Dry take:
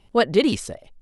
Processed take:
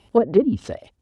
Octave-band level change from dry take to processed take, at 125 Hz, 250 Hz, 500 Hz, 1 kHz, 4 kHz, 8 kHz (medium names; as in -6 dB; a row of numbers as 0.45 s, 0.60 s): +1.5 dB, +1.5 dB, +2.0 dB, -3.0 dB, under -15 dB, under -10 dB